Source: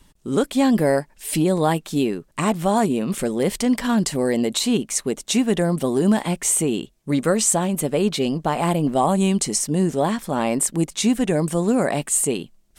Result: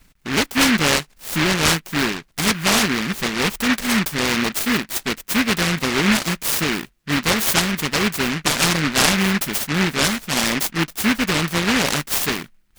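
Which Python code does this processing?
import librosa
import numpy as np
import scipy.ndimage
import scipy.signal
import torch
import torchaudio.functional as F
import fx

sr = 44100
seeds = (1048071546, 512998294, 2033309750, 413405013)

y = fx.notch(x, sr, hz=1300.0, q=5.7)
y = fx.small_body(y, sr, hz=(840.0, 1200.0), ring_ms=45, db=10)
y = fx.noise_mod_delay(y, sr, seeds[0], noise_hz=1800.0, depth_ms=0.42)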